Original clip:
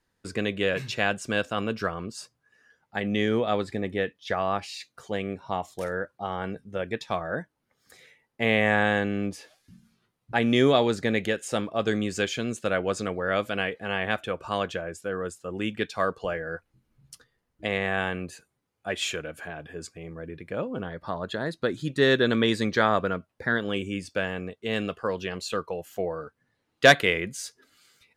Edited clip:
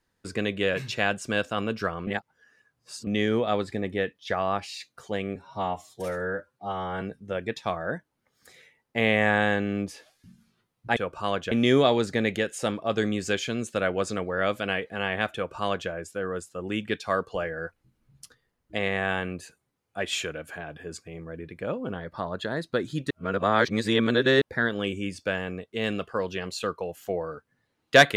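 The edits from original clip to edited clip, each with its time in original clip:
2.07–3.07 s: reverse
5.35–6.46 s: stretch 1.5×
14.24–14.79 s: copy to 10.41 s
22.00–23.31 s: reverse

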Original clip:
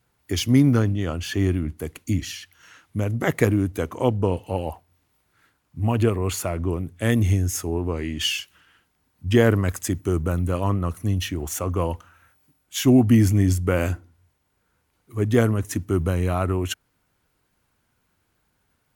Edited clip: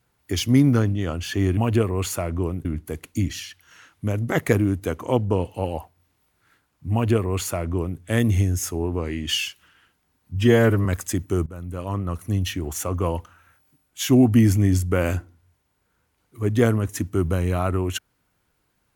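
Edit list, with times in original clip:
5.84–6.92 s: copy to 1.57 s
9.28–9.61 s: stretch 1.5×
10.22–11.08 s: fade in, from -17.5 dB

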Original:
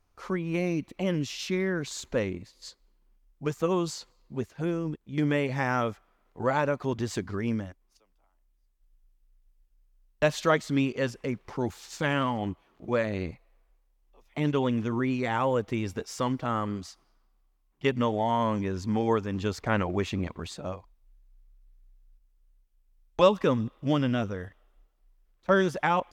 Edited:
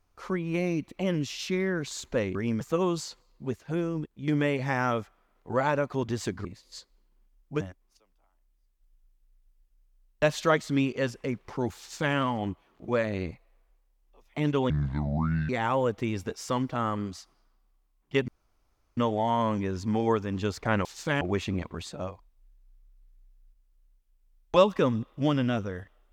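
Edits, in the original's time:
2.35–3.51 s: swap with 7.35–7.61 s
11.79–12.15 s: copy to 19.86 s
14.70–15.19 s: speed 62%
17.98 s: insert room tone 0.69 s

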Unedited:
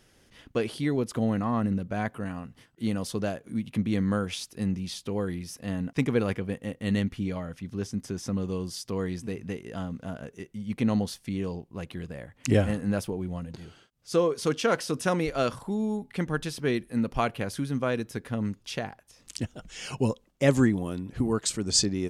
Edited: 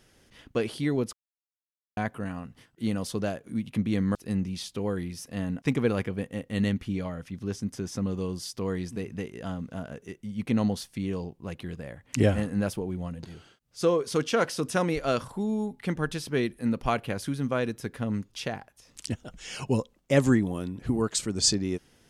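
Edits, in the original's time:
1.13–1.97 s: mute
4.15–4.46 s: delete

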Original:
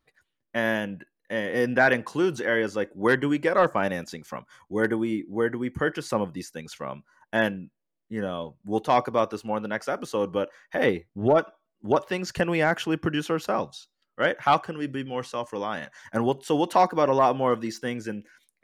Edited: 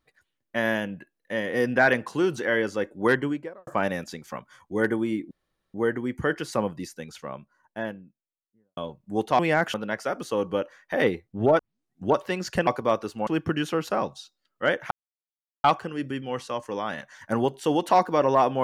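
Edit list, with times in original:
3.08–3.67 s: studio fade out
5.31 s: insert room tone 0.43 s
6.31–8.34 s: studio fade out
8.96–9.56 s: swap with 12.49–12.84 s
11.41 s: tape start 0.50 s
14.48 s: insert silence 0.73 s

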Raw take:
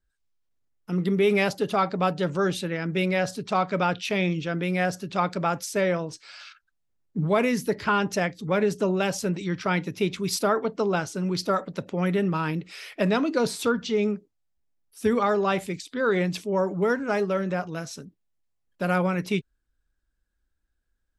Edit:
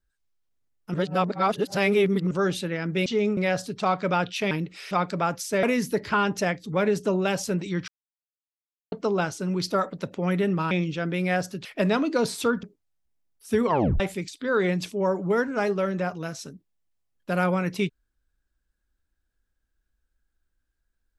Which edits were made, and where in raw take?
0.94–2.31 s: reverse
4.20–5.14 s: swap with 12.46–12.86 s
5.86–7.38 s: delete
9.63–10.67 s: mute
13.84–14.15 s: move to 3.06 s
15.18 s: tape stop 0.34 s

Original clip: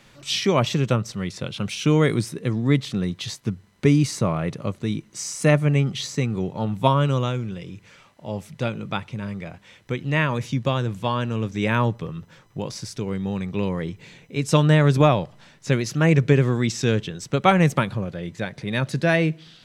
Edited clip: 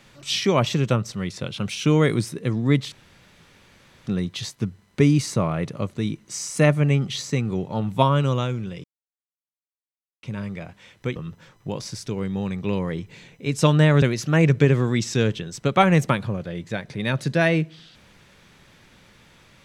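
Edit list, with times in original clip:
2.92 s: insert room tone 1.15 s
7.69–9.08 s: mute
10.01–12.06 s: delete
14.92–15.70 s: delete

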